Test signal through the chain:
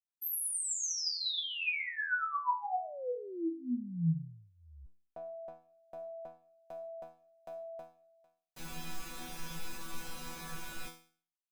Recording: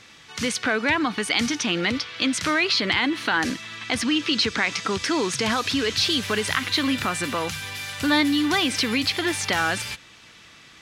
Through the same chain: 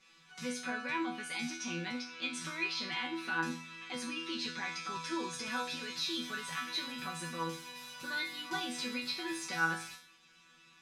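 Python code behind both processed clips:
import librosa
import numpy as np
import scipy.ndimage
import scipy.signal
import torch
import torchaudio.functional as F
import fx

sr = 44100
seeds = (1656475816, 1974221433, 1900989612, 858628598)

y = x + 0.86 * np.pad(x, (int(5.3 * sr / 1000.0), 0))[:len(x)]
y = fx.dynamic_eq(y, sr, hz=3000.0, q=4.9, threshold_db=-38.0, ratio=4.0, max_db=-3)
y = fx.resonator_bank(y, sr, root=52, chord='fifth', decay_s=0.44)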